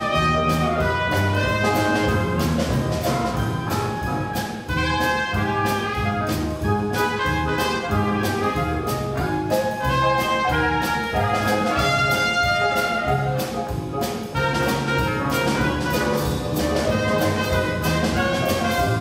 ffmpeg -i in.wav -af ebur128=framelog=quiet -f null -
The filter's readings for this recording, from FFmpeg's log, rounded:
Integrated loudness:
  I:         -21.5 LUFS
  Threshold: -31.5 LUFS
Loudness range:
  LRA:         2.8 LU
  Threshold: -41.6 LUFS
  LRA low:   -22.8 LUFS
  LRA high:  -20.0 LUFS